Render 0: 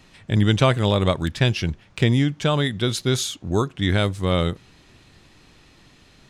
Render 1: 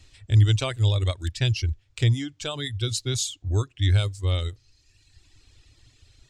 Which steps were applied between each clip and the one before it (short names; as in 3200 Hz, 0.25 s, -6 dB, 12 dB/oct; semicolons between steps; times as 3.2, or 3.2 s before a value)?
EQ curve 110 Hz 0 dB, 180 Hz -27 dB, 290 Hz -13 dB, 1000 Hz -18 dB, 7600 Hz -1 dB, 11000 Hz -12 dB; reverb removal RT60 1.2 s; bell 6200 Hz -3.5 dB 0.22 oct; gain +5 dB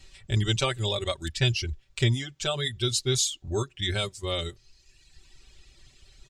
comb 5.2 ms, depth 88%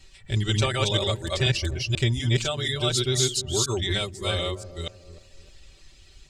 reverse delay 0.244 s, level 0 dB; dark delay 0.305 s, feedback 37%, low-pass 830 Hz, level -13 dB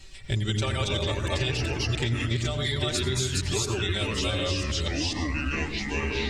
on a send at -9.5 dB: reverb RT60 0.30 s, pre-delay 76 ms; on the sum: echoes that change speed 0.248 s, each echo -5 st, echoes 2, each echo -6 dB; compressor, threshold -28 dBFS, peak gain reduction 13 dB; gain +4 dB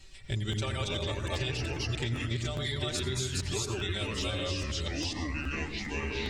crackling interface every 0.41 s, samples 512, repeat, from 0.51; gain -5.5 dB